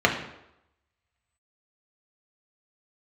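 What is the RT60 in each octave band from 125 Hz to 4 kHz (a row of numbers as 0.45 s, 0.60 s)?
0.70 s, 0.75 s, 0.85 s, 0.85 s, 0.75 s, 0.65 s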